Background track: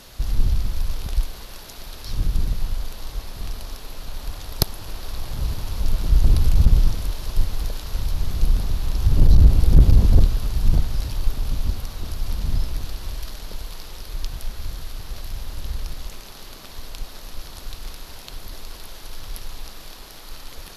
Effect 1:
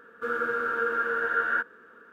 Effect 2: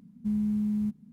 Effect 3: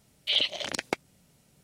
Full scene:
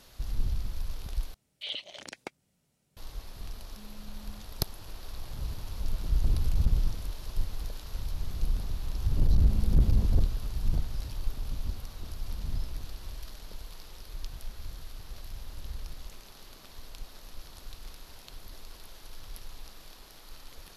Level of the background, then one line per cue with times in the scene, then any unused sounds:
background track -10.5 dB
1.34 replace with 3 -11.5 dB
3.52 add 2 -14.5 dB + compressor, threshold -36 dBFS
9.11 add 2 -3 dB + HPF 720 Hz 6 dB/oct
not used: 1

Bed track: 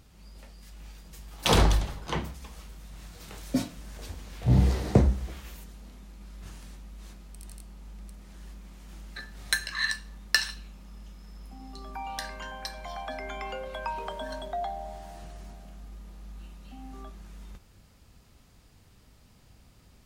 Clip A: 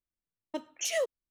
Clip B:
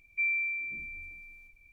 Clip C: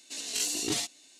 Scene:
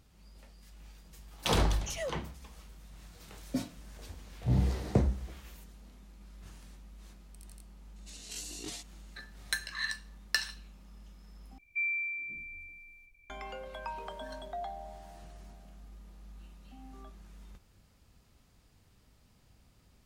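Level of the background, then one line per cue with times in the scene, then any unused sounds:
bed track -6.5 dB
1.05 add A -7.5 dB
7.96 add C -12 dB
11.58 replace with B -3 dB

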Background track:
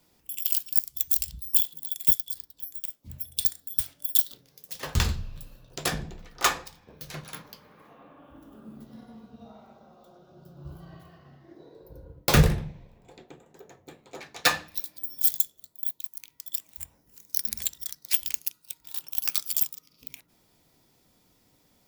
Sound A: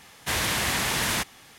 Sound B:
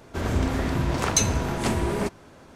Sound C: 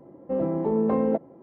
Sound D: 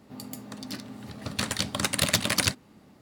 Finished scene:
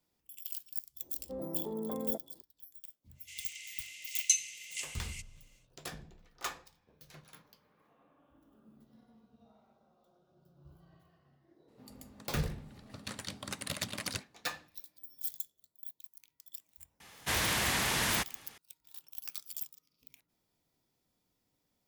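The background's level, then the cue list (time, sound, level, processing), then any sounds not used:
background track -15.5 dB
1 add C -15 dB + LPF 2200 Hz
3.13 add B -2 dB, fades 0.10 s + rippled Chebyshev high-pass 2000 Hz, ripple 9 dB
11.68 add D -13.5 dB
17 add A -5 dB

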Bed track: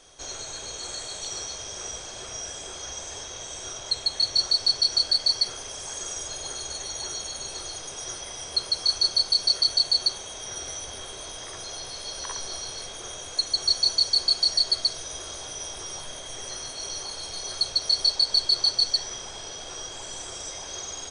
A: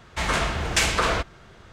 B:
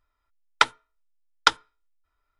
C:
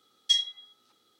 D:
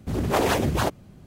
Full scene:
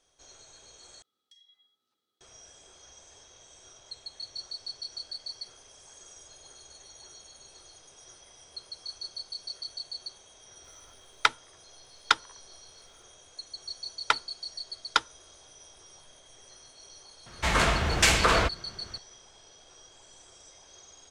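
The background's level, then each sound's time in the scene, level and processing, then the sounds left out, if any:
bed track -17 dB
1.02 replace with C -16.5 dB + compressor 16:1, threshold -39 dBFS
10.64 add B -2.5 dB + three-band squash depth 70%
13.49 add B -6 dB
17.26 add A
not used: D

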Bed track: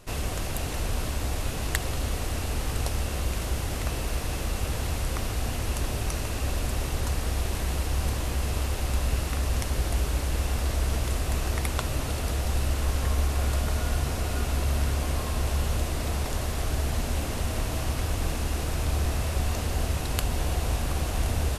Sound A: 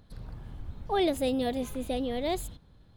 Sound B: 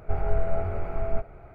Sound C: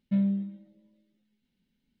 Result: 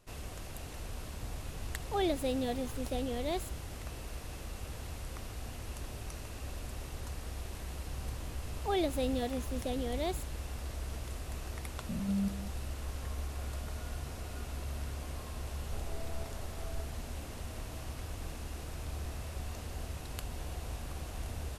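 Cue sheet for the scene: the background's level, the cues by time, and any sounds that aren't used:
bed track -13.5 dB
1.02 add A -5 dB
7.76 add A -5 dB
11.89 add C -5 dB + stepped spectrum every 0.2 s
15.63 add B -17.5 dB

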